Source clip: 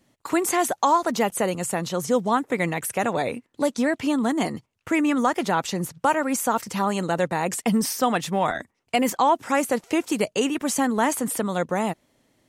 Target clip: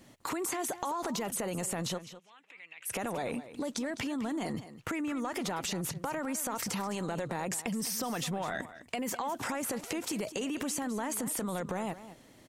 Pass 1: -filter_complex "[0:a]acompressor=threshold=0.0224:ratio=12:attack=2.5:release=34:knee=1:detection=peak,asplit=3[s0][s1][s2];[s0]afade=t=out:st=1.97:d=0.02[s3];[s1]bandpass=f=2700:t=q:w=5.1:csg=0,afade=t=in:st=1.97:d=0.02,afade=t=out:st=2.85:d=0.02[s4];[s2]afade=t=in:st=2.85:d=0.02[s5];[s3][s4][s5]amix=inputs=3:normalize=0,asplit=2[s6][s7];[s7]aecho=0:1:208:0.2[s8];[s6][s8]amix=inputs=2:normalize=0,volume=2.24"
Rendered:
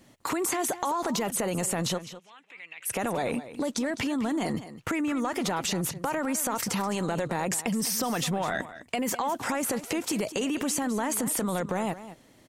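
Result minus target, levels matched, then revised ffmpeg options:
compression: peak gain reduction -6 dB
-filter_complex "[0:a]acompressor=threshold=0.0106:ratio=12:attack=2.5:release=34:knee=1:detection=peak,asplit=3[s0][s1][s2];[s0]afade=t=out:st=1.97:d=0.02[s3];[s1]bandpass=f=2700:t=q:w=5.1:csg=0,afade=t=in:st=1.97:d=0.02,afade=t=out:st=2.85:d=0.02[s4];[s2]afade=t=in:st=2.85:d=0.02[s5];[s3][s4][s5]amix=inputs=3:normalize=0,asplit=2[s6][s7];[s7]aecho=0:1:208:0.2[s8];[s6][s8]amix=inputs=2:normalize=0,volume=2.24"

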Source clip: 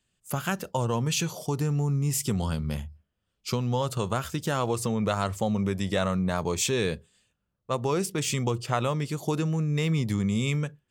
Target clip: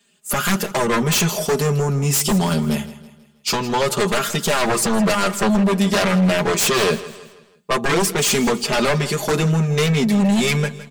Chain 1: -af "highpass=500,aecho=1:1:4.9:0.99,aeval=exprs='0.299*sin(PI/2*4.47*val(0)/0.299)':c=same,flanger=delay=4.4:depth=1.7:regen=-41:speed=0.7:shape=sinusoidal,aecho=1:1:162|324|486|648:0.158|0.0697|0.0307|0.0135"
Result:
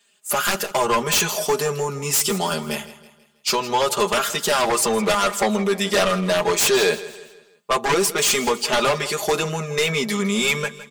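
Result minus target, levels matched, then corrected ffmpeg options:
250 Hz band -6.0 dB
-af "highpass=220,aecho=1:1:4.9:0.99,aeval=exprs='0.299*sin(PI/2*4.47*val(0)/0.299)':c=same,flanger=delay=4.4:depth=1.7:regen=-41:speed=0.7:shape=sinusoidal,aecho=1:1:162|324|486|648:0.158|0.0697|0.0307|0.0135"

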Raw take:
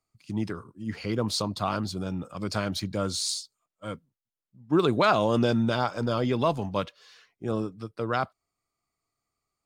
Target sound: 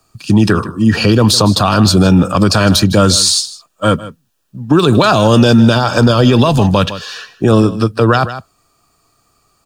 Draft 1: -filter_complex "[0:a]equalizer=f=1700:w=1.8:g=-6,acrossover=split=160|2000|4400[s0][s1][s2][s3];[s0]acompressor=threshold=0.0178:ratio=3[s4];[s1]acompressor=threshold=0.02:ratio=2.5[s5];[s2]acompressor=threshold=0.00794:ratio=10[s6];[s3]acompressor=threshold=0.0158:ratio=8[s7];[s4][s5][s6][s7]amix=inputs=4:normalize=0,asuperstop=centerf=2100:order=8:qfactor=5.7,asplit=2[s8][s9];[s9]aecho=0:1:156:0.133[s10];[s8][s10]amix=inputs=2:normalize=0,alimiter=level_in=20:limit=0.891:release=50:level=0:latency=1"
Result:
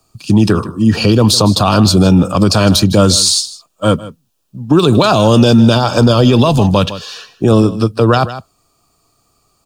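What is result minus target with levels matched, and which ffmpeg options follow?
2 kHz band -4.0 dB
-filter_complex "[0:a]equalizer=f=1700:w=1.8:g=2,acrossover=split=160|2000|4400[s0][s1][s2][s3];[s0]acompressor=threshold=0.0178:ratio=3[s4];[s1]acompressor=threshold=0.02:ratio=2.5[s5];[s2]acompressor=threshold=0.00794:ratio=10[s6];[s3]acompressor=threshold=0.0158:ratio=8[s7];[s4][s5][s6][s7]amix=inputs=4:normalize=0,asuperstop=centerf=2100:order=8:qfactor=5.7,asplit=2[s8][s9];[s9]aecho=0:1:156:0.133[s10];[s8][s10]amix=inputs=2:normalize=0,alimiter=level_in=20:limit=0.891:release=50:level=0:latency=1"

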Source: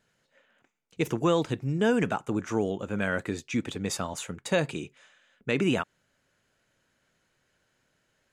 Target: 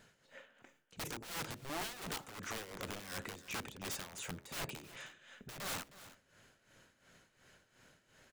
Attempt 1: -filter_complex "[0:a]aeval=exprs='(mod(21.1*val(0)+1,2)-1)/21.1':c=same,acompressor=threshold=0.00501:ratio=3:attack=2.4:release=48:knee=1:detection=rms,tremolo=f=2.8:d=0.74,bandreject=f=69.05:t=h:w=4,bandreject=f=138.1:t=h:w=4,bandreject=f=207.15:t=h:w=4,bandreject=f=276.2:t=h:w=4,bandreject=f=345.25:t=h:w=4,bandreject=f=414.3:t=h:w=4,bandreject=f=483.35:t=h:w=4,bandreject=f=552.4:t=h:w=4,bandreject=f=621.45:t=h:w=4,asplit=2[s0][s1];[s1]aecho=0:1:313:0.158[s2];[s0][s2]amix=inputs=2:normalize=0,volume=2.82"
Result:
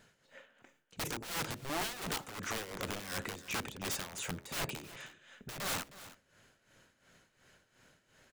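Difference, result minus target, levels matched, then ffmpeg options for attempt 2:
compression: peak gain reduction -4.5 dB
-filter_complex "[0:a]aeval=exprs='(mod(21.1*val(0)+1,2)-1)/21.1':c=same,acompressor=threshold=0.00224:ratio=3:attack=2.4:release=48:knee=1:detection=rms,tremolo=f=2.8:d=0.74,bandreject=f=69.05:t=h:w=4,bandreject=f=138.1:t=h:w=4,bandreject=f=207.15:t=h:w=4,bandreject=f=276.2:t=h:w=4,bandreject=f=345.25:t=h:w=4,bandreject=f=414.3:t=h:w=4,bandreject=f=483.35:t=h:w=4,bandreject=f=552.4:t=h:w=4,bandreject=f=621.45:t=h:w=4,asplit=2[s0][s1];[s1]aecho=0:1:313:0.158[s2];[s0][s2]amix=inputs=2:normalize=0,volume=2.82"

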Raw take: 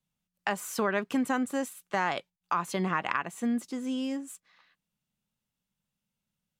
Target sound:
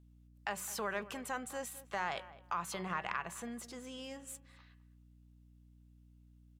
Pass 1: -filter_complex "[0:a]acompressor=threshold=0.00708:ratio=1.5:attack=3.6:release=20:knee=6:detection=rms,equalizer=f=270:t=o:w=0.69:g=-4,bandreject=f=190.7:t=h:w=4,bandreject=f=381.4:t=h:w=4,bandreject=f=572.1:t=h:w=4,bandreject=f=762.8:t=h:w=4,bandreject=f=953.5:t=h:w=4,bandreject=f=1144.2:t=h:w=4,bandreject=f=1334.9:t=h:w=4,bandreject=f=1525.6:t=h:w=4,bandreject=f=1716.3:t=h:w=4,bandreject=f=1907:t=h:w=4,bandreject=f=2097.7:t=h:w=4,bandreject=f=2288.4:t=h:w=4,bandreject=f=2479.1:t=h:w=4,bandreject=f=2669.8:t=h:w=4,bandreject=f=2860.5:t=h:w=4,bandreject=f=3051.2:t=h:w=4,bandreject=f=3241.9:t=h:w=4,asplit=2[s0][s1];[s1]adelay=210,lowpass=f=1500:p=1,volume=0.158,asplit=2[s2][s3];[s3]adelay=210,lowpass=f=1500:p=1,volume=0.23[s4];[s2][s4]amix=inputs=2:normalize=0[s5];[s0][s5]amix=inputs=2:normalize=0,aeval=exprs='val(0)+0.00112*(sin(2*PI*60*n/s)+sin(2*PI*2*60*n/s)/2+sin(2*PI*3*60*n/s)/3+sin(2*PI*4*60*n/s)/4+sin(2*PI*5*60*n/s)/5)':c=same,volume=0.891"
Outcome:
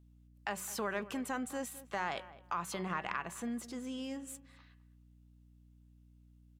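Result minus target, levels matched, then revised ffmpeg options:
250 Hz band +5.0 dB
-filter_complex "[0:a]acompressor=threshold=0.00708:ratio=1.5:attack=3.6:release=20:knee=6:detection=rms,equalizer=f=270:t=o:w=0.69:g=-13,bandreject=f=190.7:t=h:w=4,bandreject=f=381.4:t=h:w=4,bandreject=f=572.1:t=h:w=4,bandreject=f=762.8:t=h:w=4,bandreject=f=953.5:t=h:w=4,bandreject=f=1144.2:t=h:w=4,bandreject=f=1334.9:t=h:w=4,bandreject=f=1525.6:t=h:w=4,bandreject=f=1716.3:t=h:w=4,bandreject=f=1907:t=h:w=4,bandreject=f=2097.7:t=h:w=4,bandreject=f=2288.4:t=h:w=4,bandreject=f=2479.1:t=h:w=4,bandreject=f=2669.8:t=h:w=4,bandreject=f=2860.5:t=h:w=4,bandreject=f=3051.2:t=h:w=4,bandreject=f=3241.9:t=h:w=4,asplit=2[s0][s1];[s1]adelay=210,lowpass=f=1500:p=1,volume=0.158,asplit=2[s2][s3];[s3]adelay=210,lowpass=f=1500:p=1,volume=0.23[s4];[s2][s4]amix=inputs=2:normalize=0[s5];[s0][s5]amix=inputs=2:normalize=0,aeval=exprs='val(0)+0.00112*(sin(2*PI*60*n/s)+sin(2*PI*2*60*n/s)/2+sin(2*PI*3*60*n/s)/3+sin(2*PI*4*60*n/s)/4+sin(2*PI*5*60*n/s)/5)':c=same,volume=0.891"

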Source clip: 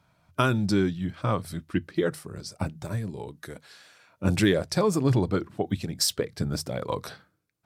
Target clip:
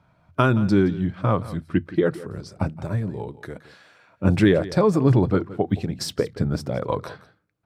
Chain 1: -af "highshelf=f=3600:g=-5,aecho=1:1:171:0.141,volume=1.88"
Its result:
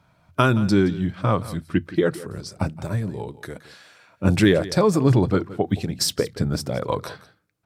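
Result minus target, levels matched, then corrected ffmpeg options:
8 kHz band +8.5 dB
-af "highshelf=f=3600:g=-16,aecho=1:1:171:0.141,volume=1.88"

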